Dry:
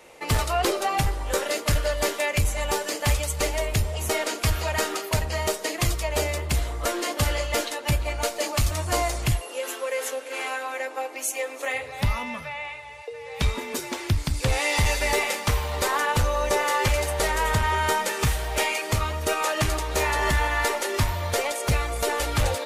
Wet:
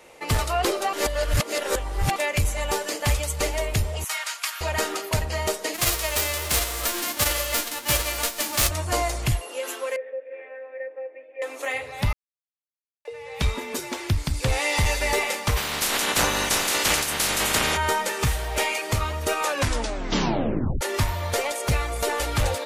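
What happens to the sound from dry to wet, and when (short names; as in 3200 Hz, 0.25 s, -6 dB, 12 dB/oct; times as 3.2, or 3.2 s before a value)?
0.93–2.16 reverse
4.04–4.61 inverse Chebyshev high-pass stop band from 170 Hz, stop band 80 dB
5.73–8.67 spectral whitening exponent 0.3
9.96–11.42 vocal tract filter e
12.13–13.05 mute
15.56–17.76 spectral limiter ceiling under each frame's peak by 27 dB
19.45 tape stop 1.36 s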